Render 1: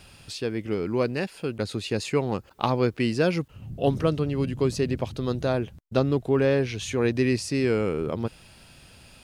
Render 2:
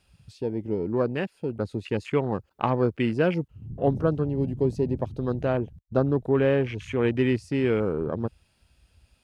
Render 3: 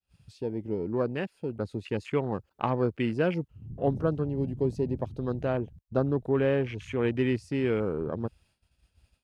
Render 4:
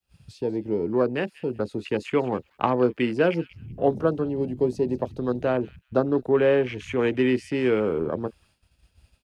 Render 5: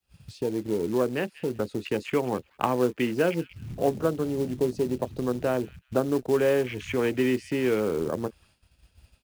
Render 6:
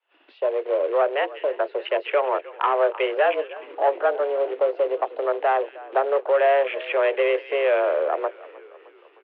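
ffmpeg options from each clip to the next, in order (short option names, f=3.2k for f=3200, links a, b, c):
-af "afwtdn=0.0178"
-af "agate=range=-33dB:threshold=-55dB:ratio=3:detection=peak,volume=-3.5dB"
-filter_complex "[0:a]acrossover=split=210|520|2200[a][b][c][d];[a]acompressor=threshold=-44dB:ratio=6[e];[b]asplit=2[f][g];[g]adelay=24,volume=-7.5dB[h];[f][h]amix=inputs=2:normalize=0[i];[d]asplit=2[j][k];[k]adelay=188,lowpass=f=3.3k:p=1,volume=-9dB,asplit=2[l][m];[m]adelay=188,lowpass=f=3.3k:p=1,volume=0.21,asplit=2[n][o];[o]adelay=188,lowpass=f=3.3k:p=1,volume=0.21[p];[j][l][n][p]amix=inputs=4:normalize=0[q];[e][i][c][q]amix=inputs=4:normalize=0,volume=6dB"
-filter_complex "[0:a]asplit=2[a][b];[b]acompressor=threshold=-29dB:ratio=12,volume=1dB[c];[a][c]amix=inputs=2:normalize=0,acrusher=bits=5:mode=log:mix=0:aa=0.000001,volume=-5dB"
-filter_complex "[0:a]asplit=6[a][b][c][d][e][f];[b]adelay=308,afreqshift=-53,volume=-21dB[g];[c]adelay=616,afreqshift=-106,volume=-25dB[h];[d]adelay=924,afreqshift=-159,volume=-29dB[i];[e]adelay=1232,afreqshift=-212,volume=-33dB[j];[f]adelay=1540,afreqshift=-265,volume=-37.1dB[k];[a][g][h][i][j][k]amix=inputs=6:normalize=0,asplit=2[l][m];[m]highpass=f=720:p=1,volume=18dB,asoftclip=type=tanh:threshold=-8dB[n];[l][n]amix=inputs=2:normalize=0,lowpass=f=1.6k:p=1,volume=-6dB,highpass=f=230:t=q:w=0.5412,highpass=f=230:t=q:w=1.307,lowpass=f=3.1k:t=q:w=0.5176,lowpass=f=3.1k:t=q:w=0.7071,lowpass=f=3.1k:t=q:w=1.932,afreqshift=140"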